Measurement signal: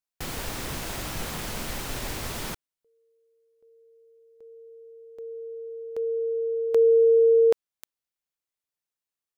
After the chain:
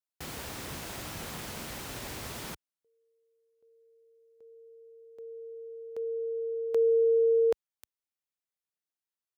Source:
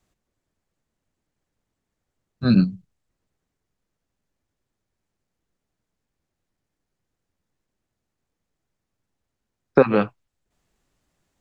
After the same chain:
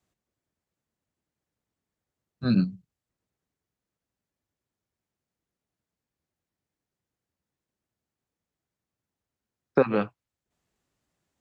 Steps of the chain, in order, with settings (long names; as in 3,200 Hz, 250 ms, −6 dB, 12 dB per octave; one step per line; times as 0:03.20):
high-pass filter 62 Hz
level −6 dB